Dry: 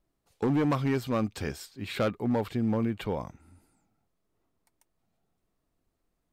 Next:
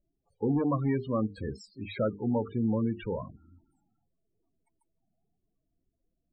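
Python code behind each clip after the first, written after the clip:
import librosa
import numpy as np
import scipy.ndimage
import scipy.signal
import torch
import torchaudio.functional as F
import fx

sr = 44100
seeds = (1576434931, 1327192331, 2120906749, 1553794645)

y = fx.hum_notches(x, sr, base_hz=50, count=9)
y = fx.spec_topn(y, sr, count=16)
y = fx.env_lowpass_down(y, sr, base_hz=2500.0, full_db=-25.5)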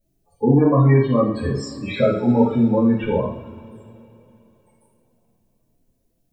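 y = fx.high_shelf(x, sr, hz=6100.0, db=7.0)
y = fx.rev_double_slope(y, sr, seeds[0], early_s=0.51, late_s=3.5, knee_db=-22, drr_db=-9.5)
y = y * librosa.db_to_amplitude(2.5)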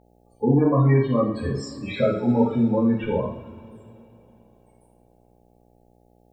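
y = fx.dmg_buzz(x, sr, base_hz=60.0, harmonics=14, level_db=-55.0, tilt_db=-2, odd_only=False)
y = y * librosa.db_to_amplitude(-3.5)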